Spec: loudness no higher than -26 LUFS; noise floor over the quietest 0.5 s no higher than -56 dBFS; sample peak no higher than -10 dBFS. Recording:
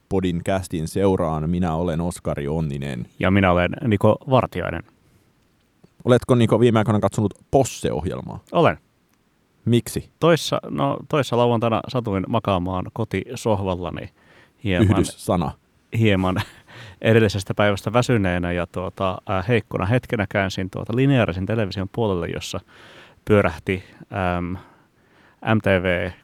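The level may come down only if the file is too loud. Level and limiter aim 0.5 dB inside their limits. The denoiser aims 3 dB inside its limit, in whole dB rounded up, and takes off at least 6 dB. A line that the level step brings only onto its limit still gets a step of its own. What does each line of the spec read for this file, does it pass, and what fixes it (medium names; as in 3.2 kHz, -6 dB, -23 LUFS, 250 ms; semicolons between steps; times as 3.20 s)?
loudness -21.5 LUFS: fail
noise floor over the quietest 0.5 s -63 dBFS: pass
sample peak -3.0 dBFS: fail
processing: trim -5 dB; peak limiter -10.5 dBFS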